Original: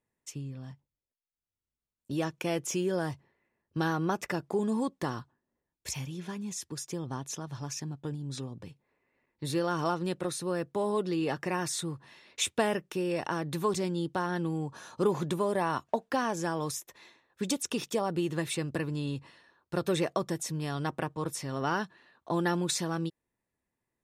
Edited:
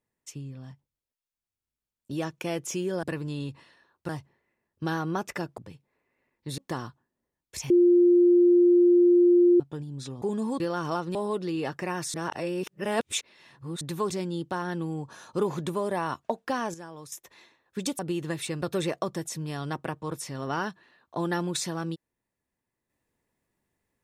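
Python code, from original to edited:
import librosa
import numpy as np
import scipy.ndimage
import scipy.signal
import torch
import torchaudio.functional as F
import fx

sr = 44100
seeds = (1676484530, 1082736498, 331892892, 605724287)

y = fx.edit(x, sr, fx.swap(start_s=4.52, length_s=0.38, other_s=8.54, other_length_s=1.0),
    fx.bleep(start_s=6.02, length_s=1.9, hz=351.0, db=-15.0),
    fx.cut(start_s=10.09, length_s=0.7),
    fx.reverse_span(start_s=11.78, length_s=1.67),
    fx.clip_gain(start_s=16.38, length_s=0.38, db=-11.0),
    fx.cut(start_s=17.63, length_s=0.44),
    fx.move(start_s=18.7, length_s=1.06, to_s=3.03), tone=tone)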